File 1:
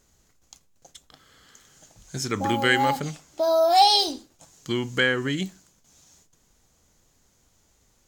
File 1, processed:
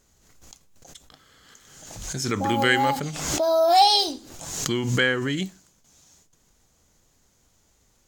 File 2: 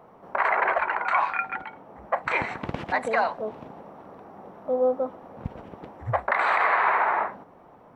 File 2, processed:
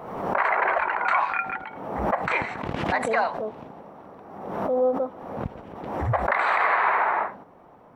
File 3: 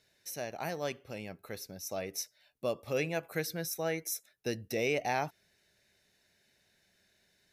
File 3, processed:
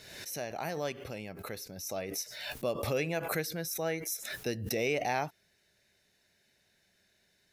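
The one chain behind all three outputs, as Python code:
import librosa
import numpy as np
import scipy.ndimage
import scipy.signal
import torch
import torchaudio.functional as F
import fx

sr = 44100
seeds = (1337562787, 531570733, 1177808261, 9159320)

y = fx.pre_swell(x, sr, db_per_s=48.0)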